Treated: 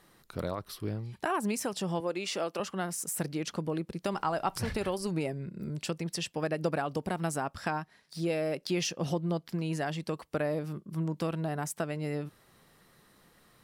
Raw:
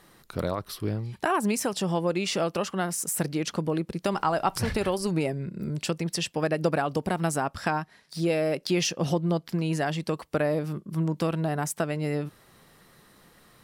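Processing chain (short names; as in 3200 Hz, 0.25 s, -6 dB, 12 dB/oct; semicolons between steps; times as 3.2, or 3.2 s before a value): 2–2.6 HPF 270 Hz 12 dB/oct; gain -5.5 dB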